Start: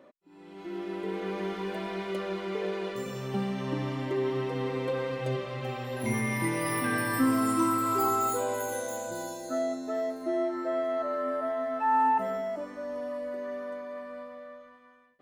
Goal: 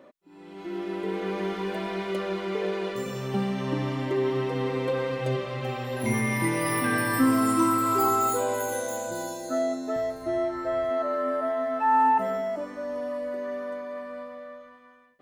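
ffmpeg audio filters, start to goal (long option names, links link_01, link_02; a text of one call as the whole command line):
ffmpeg -i in.wav -filter_complex "[0:a]asettb=1/sr,asplit=3[link_01][link_02][link_03];[link_01]atrim=end=9.964[link_04];[link_02]atrim=start=9.96:end=10.91,asetpts=PTS-STARTPTS,afade=type=in:duration=0.004:curve=qsin,afade=type=out:start_time=0.946:duration=0.004:curve=qsin,lowshelf=frequency=160:width_type=q:width=3:gain=12.5[link_05];[link_03]atrim=start=10.906[link_06];[link_04][link_05]acrossfade=duration=0.004:curve1=hsin:curve2=qsin[link_07];[link_07][link_06]acrossfade=duration=0.004:curve1=qsin:curve2=hsin,volume=3.5dB" out.wav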